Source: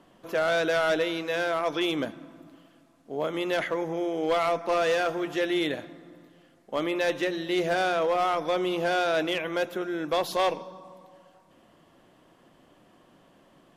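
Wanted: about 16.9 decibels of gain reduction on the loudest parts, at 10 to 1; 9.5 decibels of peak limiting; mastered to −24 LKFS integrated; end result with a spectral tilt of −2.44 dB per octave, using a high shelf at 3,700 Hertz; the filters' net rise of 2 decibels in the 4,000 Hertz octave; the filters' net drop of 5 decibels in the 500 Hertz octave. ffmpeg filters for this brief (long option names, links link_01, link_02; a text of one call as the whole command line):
ffmpeg -i in.wav -af "equalizer=frequency=500:width_type=o:gain=-6.5,highshelf=frequency=3700:gain=-6,equalizer=frequency=4000:width_type=o:gain=6,acompressor=threshold=-42dB:ratio=10,volume=23.5dB,alimiter=limit=-14.5dB:level=0:latency=1" out.wav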